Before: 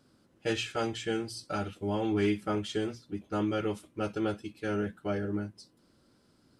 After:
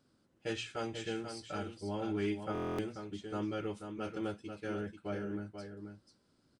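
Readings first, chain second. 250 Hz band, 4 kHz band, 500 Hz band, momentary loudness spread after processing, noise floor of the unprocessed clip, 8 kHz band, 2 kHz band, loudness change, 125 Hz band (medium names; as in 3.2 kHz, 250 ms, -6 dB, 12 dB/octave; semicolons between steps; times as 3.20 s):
-6.5 dB, -7.0 dB, -6.0 dB, 9 LU, -66 dBFS, -7.0 dB, -6.5 dB, -6.5 dB, -6.5 dB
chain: delay 488 ms -7.5 dB; resampled via 22.05 kHz; buffer glitch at 2.53 s, samples 1024, times 10; trim -7 dB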